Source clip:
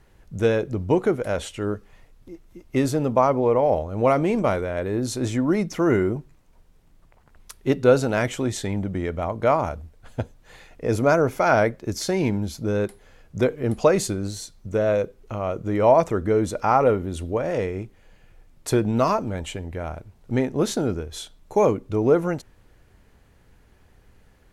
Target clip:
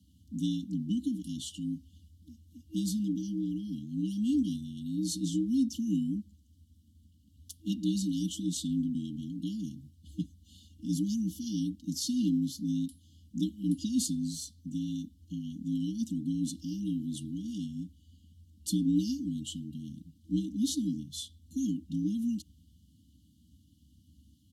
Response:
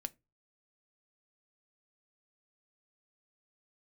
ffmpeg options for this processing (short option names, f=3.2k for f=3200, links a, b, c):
-af "afreqshift=60,aecho=1:1:4:0.65,afftfilt=real='re*(1-between(b*sr/4096,320,2800))':imag='im*(1-between(b*sr/4096,320,2800))':win_size=4096:overlap=0.75,volume=-5.5dB"